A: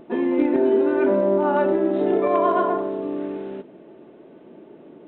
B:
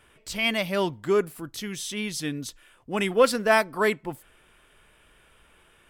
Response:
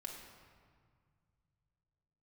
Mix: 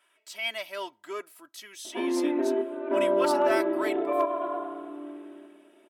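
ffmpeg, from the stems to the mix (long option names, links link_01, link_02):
-filter_complex "[0:a]highpass=frequency=1000:poles=1,highshelf=frequency=2700:gain=-10.5,tremolo=f=0.69:d=0.32,adelay=1850,volume=1dB,asplit=2[link_01][link_02];[link_02]volume=-14dB[link_03];[1:a]highpass=620,volume=-9dB,asplit=2[link_04][link_05];[link_05]apad=whole_len=305201[link_06];[link_01][link_06]sidechaingate=range=-9dB:threshold=-60dB:ratio=16:detection=peak[link_07];[link_03]aecho=0:1:106|212|318|424|530|636|742|848|954:1|0.57|0.325|0.185|0.106|0.0602|0.0343|0.0195|0.0111[link_08];[link_07][link_04][link_08]amix=inputs=3:normalize=0,aecho=1:1:3.1:0.69,asoftclip=type=hard:threshold=-14.5dB"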